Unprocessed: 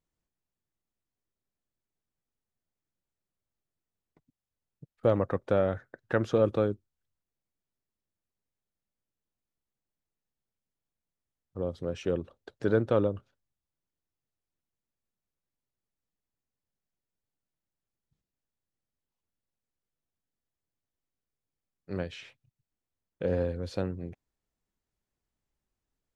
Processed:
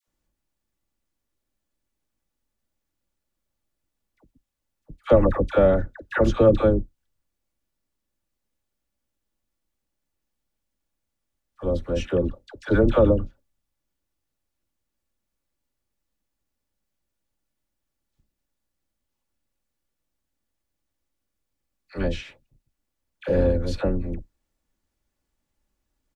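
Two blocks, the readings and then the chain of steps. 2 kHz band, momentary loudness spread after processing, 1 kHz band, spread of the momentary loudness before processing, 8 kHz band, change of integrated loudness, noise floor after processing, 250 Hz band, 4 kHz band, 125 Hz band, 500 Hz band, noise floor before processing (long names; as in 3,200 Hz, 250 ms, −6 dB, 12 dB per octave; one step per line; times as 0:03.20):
+7.5 dB, 18 LU, +7.5 dB, 16 LU, can't be measured, +8.0 dB, −82 dBFS, +8.5 dB, +7.5 dB, +8.0 dB, +8.0 dB, below −85 dBFS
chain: sub-octave generator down 2 octaves, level −1 dB
comb filter 3.5 ms, depth 34%
all-pass dispersion lows, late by 76 ms, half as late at 870 Hz
level +7 dB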